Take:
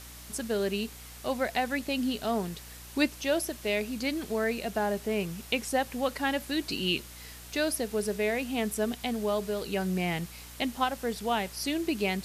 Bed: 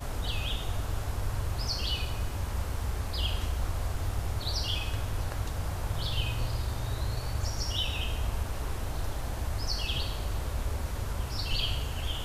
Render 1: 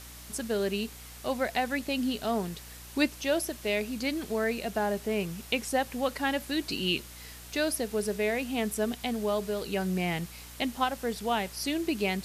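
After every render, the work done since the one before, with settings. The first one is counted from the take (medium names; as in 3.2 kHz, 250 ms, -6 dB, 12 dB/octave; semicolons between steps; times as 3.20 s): no audible change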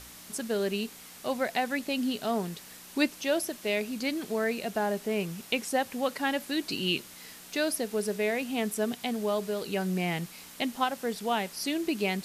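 de-hum 60 Hz, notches 2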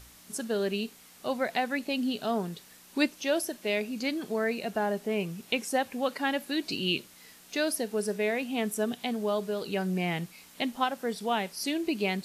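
noise print and reduce 6 dB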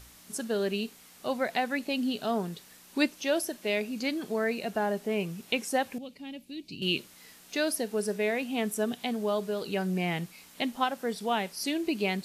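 5.98–6.82 s: FFT filter 140 Hz 0 dB, 1.6 kHz -29 dB, 2.4 kHz -10 dB, 11 kHz -16 dB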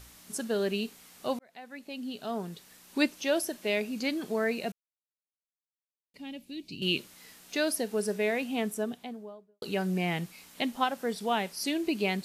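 1.39–3.05 s: fade in; 4.72–6.14 s: mute; 8.42–9.62 s: studio fade out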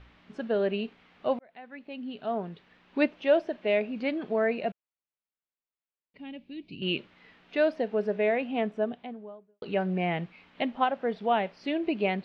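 low-pass 3 kHz 24 dB/octave; dynamic bell 620 Hz, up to +7 dB, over -45 dBFS, Q 2.1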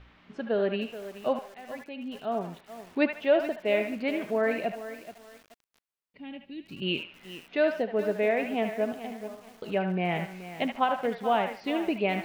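feedback echo behind a band-pass 74 ms, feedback 30%, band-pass 1.5 kHz, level -5 dB; bit-crushed delay 429 ms, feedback 35%, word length 7-bit, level -12.5 dB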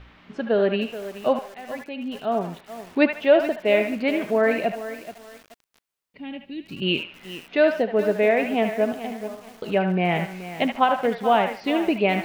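trim +6.5 dB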